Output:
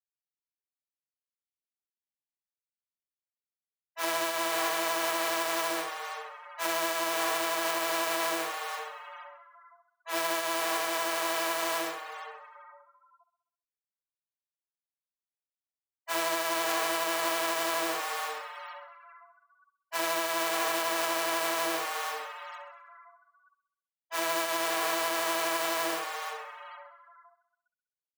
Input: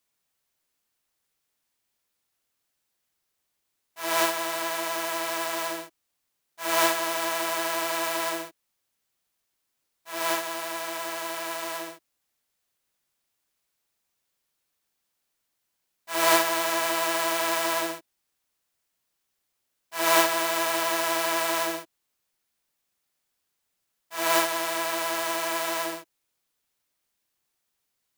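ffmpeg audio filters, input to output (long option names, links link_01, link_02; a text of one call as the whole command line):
ffmpeg -i in.wav -filter_complex "[0:a]asplit=2[link_01][link_02];[link_02]asplit=4[link_03][link_04][link_05][link_06];[link_03]adelay=463,afreqshift=120,volume=-12dB[link_07];[link_04]adelay=926,afreqshift=240,volume=-20dB[link_08];[link_05]adelay=1389,afreqshift=360,volume=-27.9dB[link_09];[link_06]adelay=1852,afreqshift=480,volume=-35.9dB[link_10];[link_07][link_08][link_09][link_10]amix=inputs=4:normalize=0[link_11];[link_01][link_11]amix=inputs=2:normalize=0,afftfilt=real='re*gte(hypot(re,im),0.00501)':imag='im*gte(hypot(re,im),0.00501)':win_size=1024:overlap=0.75,acrossover=split=350|6800[link_12][link_13][link_14];[link_12]acompressor=threshold=-45dB:ratio=4[link_15];[link_13]acompressor=threshold=-30dB:ratio=4[link_16];[link_14]acompressor=threshold=-40dB:ratio=4[link_17];[link_15][link_16][link_17]amix=inputs=3:normalize=0,asplit=2[link_18][link_19];[link_19]aecho=0:1:65|130|195|260|325|390:0.2|0.114|0.0648|0.037|0.0211|0.012[link_20];[link_18][link_20]amix=inputs=2:normalize=0,alimiter=limit=-22.5dB:level=0:latency=1:release=101,highpass=180,volume=4dB" out.wav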